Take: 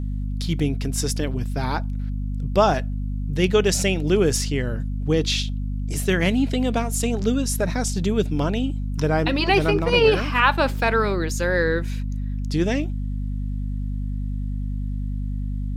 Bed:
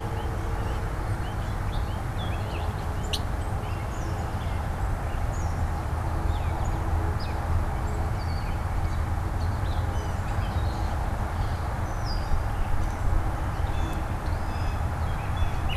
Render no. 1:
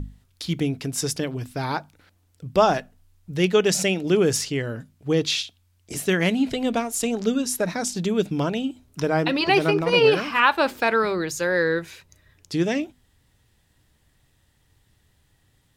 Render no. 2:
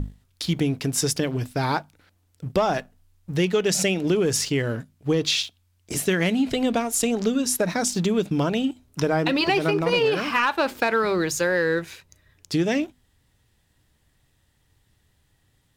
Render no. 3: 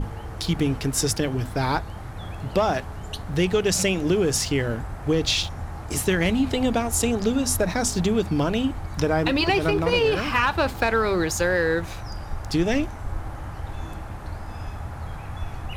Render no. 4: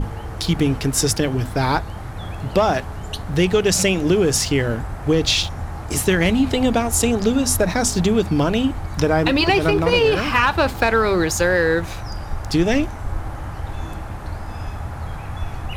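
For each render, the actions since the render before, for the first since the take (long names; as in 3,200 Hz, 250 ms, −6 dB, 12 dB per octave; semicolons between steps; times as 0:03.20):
mains-hum notches 50/100/150/200/250 Hz
leveller curve on the samples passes 1; downward compressor, threshold −18 dBFS, peak gain reduction 8 dB
mix in bed −5.5 dB
level +4.5 dB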